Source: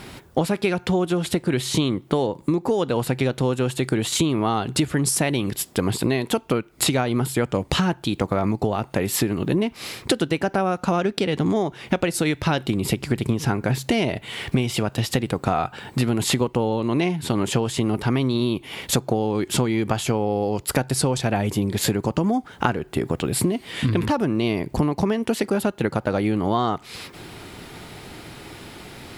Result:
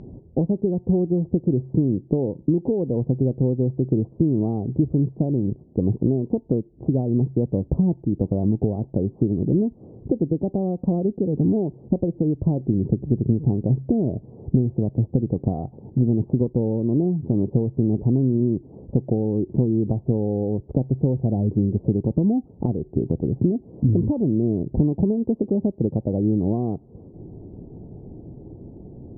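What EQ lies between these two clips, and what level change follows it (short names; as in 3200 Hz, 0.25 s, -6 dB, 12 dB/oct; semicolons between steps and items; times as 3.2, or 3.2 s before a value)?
Gaussian blur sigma 18 samples; air absorption 120 m; +4.0 dB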